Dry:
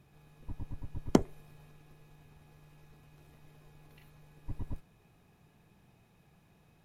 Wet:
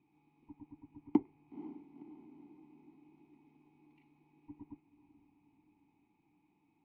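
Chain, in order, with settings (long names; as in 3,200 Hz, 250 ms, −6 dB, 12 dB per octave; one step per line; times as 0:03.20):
treble cut that deepens with the level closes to 2,700 Hz
formant filter u
feedback delay with all-pass diffusion 497 ms, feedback 56%, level −14 dB
level +3.5 dB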